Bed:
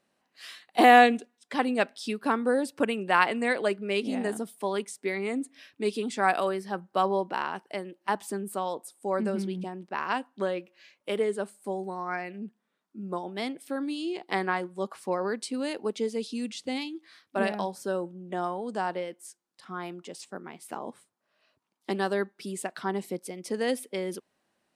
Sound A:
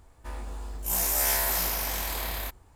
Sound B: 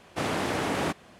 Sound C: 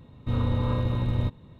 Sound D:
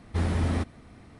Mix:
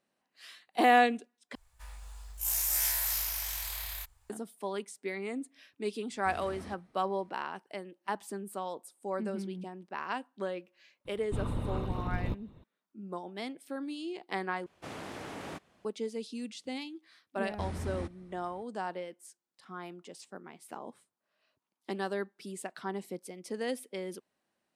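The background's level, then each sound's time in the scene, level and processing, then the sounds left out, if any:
bed −6.5 dB
0:01.55: overwrite with A −3 dB + guitar amp tone stack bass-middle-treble 10-0-10
0:06.11: mix in D −15 dB + low-shelf EQ 140 Hz −11 dB
0:11.05: mix in C −0.5 dB + harmonic and percussive parts rebalanced harmonic −16 dB
0:14.66: overwrite with B −14 dB
0:17.44: mix in D −11.5 dB

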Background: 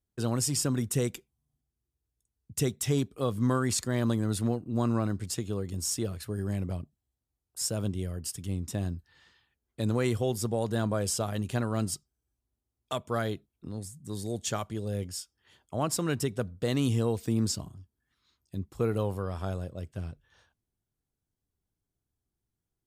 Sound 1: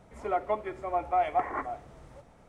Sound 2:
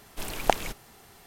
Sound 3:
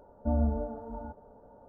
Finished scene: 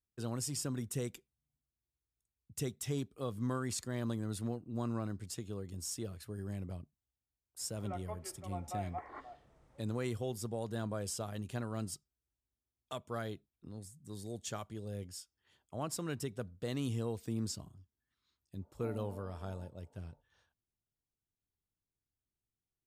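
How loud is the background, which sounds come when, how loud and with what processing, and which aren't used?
background −9.5 dB
0:07.59: mix in 1 −15.5 dB
0:18.56: mix in 3 −15.5 dB, fades 0.10 s + Butterworth high-pass 220 Hz
not used: 2

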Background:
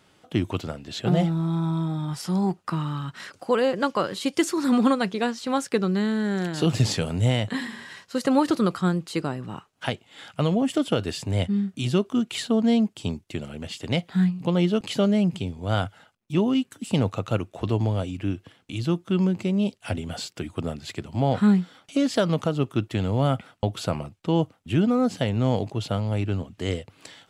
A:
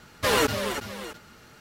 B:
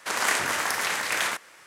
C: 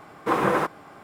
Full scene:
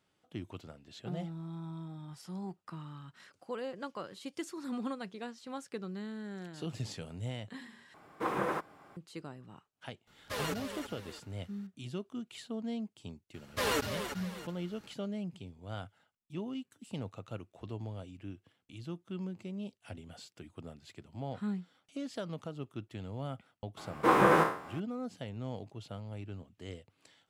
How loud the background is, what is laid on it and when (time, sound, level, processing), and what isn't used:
background −17.5 dB
0:07.94: overwrite with C −11 dB
0:10.07: mix in A −14.5 dB
0:13.34: mix in A −9 dB
0:23.77: mix in C −3.5 dB + peak hold with a decay on every bin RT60 0.50 s
not used: B

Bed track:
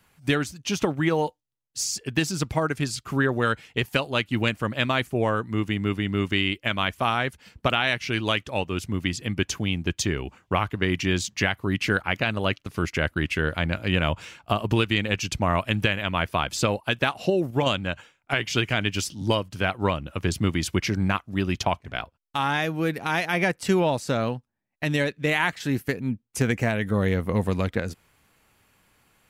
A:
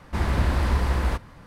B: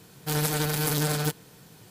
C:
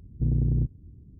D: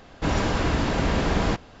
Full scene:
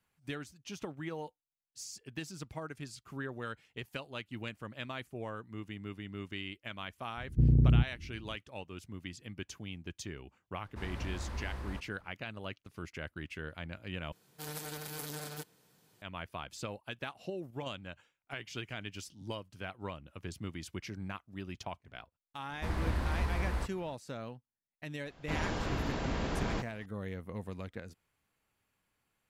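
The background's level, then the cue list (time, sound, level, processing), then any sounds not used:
bed track −17.5 dB
0:07.17: mix in C
0:10.63: mix in A −17.5 dB
0:14.12: overwrite with B −14.5 dB + low-shelf EQ 150 Hz −9 dB
0:22.49: mix in A −10.5 dB
0:25.06: mix in D −11.5 dB

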